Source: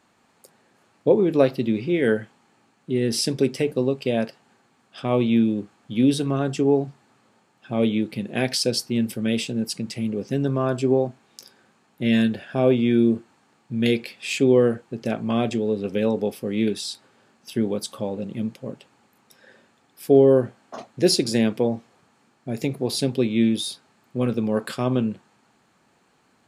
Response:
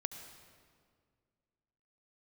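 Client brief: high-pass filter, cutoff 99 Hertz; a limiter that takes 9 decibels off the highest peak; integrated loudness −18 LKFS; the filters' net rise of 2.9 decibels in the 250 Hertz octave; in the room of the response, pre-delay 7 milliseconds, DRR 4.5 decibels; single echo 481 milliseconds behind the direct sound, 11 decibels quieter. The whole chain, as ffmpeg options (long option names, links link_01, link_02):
-filter_complex "[0:a]highpass=99,equalizer=frequency=250:width_type=o:gain=3.5,alimiter=limit=-11.5dB:level=0:latency=1,aecho=1:1:481:0.282,asplit=2[link_01][link_02];[1:a]atrim=start_sample=2205,adelay=7[link_03];[link_02][link_03]afir=irnorm=-1:irlink=0,volume=-4dB[link_04];[link_01][link_04]amix=inputs=2:normalize=0,volume=5dB"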